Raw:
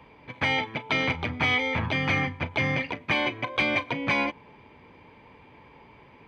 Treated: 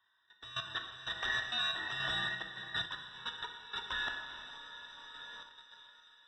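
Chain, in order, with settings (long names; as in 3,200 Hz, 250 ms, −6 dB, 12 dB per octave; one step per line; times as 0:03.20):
frequency inversion band by band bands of 2,000 Hz
noise gate −40 dBFS, range −26 dB
high-shelf EQ 2,400 Hz +5 dB
feedback delay with all-pass diffusion 453 ms, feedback 45%, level −13 dB
volume swells 552 ms
output level in coarse steps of 17 dB
parametric band 690 Hz +3 dB 0.37 octaves
notch filter 2,500 Hz, Q 13
reverb whose tail is shaped and stops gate 480 ms falling, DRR 3 dB
sample-and-hold tremolo
one half of a high-frequency compander encoder only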